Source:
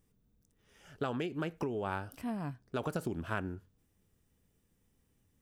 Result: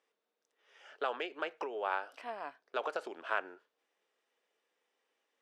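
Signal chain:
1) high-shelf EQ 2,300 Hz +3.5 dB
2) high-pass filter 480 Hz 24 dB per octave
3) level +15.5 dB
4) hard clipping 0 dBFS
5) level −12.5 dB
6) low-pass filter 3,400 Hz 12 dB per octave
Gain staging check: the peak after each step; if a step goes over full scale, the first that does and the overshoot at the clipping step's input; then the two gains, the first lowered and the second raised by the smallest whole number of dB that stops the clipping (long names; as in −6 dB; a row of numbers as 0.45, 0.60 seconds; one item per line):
−20.0, −20.0, −4.5, −4.5, −17.0, −17.5 dBFS
no step passes full scale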